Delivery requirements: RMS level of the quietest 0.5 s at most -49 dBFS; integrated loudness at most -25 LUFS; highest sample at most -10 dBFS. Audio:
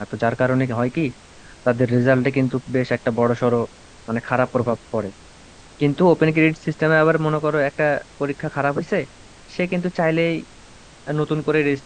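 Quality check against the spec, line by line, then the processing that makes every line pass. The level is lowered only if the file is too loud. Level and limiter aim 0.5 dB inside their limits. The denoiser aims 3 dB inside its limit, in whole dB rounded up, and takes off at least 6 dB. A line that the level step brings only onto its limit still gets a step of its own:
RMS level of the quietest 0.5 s -45 dBFS: fail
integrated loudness -20.5 LUFS: fail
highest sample -2.5 dBFS: fail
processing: gain -5 dB; limiter -10.5 dBFS

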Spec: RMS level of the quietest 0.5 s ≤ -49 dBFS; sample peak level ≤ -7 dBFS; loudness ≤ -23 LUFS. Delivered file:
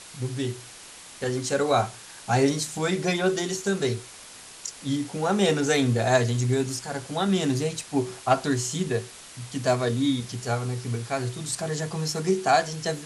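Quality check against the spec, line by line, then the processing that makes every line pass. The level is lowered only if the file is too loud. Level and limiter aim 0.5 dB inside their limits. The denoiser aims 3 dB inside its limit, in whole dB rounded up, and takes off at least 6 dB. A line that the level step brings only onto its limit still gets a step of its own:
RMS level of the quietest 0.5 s -45 dBFS: fail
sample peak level -8.5 dBFS: OK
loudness -26.0 LUFS: OK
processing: denoiser 7 dB, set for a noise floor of -45 dBFS

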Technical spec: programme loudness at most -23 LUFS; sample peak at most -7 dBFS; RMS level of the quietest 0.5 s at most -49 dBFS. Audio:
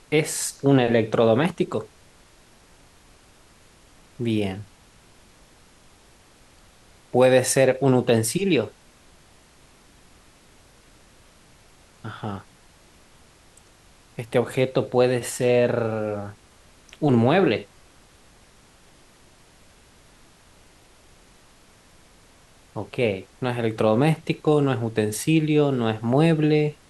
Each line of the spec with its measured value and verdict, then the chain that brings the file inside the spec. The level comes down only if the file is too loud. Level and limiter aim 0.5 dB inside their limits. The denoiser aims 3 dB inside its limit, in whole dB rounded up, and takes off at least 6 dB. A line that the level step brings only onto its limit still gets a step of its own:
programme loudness -22.0 LUFS: fail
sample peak -6.0 dBFS: fail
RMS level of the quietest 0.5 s -54 dBFS: OK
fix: gain -1.5 dB

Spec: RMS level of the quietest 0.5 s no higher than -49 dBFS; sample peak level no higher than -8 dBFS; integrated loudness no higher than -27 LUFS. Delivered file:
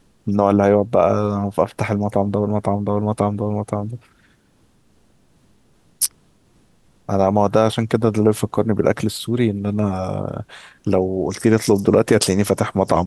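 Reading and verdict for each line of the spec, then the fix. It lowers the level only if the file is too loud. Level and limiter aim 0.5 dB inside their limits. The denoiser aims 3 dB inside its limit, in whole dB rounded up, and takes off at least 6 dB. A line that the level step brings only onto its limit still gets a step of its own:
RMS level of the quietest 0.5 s -57 dBFS: OK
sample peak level -2.5 dBFS: fail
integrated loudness -19.0 LUFS: fail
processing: gain -8.5 dB

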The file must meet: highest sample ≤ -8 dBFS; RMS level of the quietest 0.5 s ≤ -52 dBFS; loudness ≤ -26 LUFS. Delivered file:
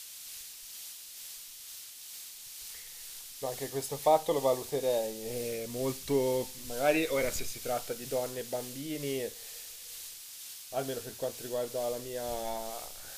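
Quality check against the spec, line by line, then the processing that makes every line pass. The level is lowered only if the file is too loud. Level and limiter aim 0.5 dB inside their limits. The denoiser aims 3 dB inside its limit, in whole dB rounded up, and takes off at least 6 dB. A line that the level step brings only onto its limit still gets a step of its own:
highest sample -13.5 dBFS: OK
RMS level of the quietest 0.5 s -47 dBFS: fail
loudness -34.5 LUFS: OK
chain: denoiser 8 dB, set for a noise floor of -47 dBFS

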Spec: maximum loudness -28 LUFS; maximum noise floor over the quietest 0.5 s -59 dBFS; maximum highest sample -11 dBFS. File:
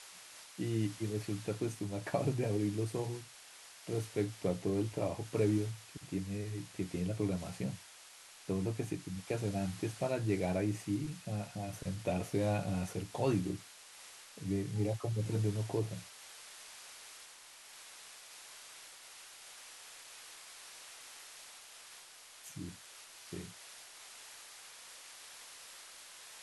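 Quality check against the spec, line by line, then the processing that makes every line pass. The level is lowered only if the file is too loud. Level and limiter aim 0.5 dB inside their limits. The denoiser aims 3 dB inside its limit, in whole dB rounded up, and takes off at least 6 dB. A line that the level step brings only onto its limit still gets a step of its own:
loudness -37.0 LUFS: OK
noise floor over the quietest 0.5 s -56 dBFS: fail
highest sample -19.0 dBFS: OK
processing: denoiser 6 dB, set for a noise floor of -56 dBFS

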